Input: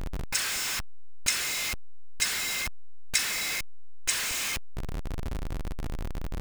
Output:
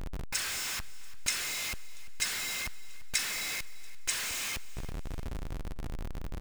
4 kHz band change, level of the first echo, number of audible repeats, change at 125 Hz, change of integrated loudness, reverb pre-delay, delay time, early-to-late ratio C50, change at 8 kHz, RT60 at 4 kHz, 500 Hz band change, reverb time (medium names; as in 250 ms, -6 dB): -4.5 dB, -19.0 dB, 2, -4.5 dB, -4.5 dB, no reverb, 343 ms, no reverb, -4.5 dB, no reverb, -4.5 dB, no reverb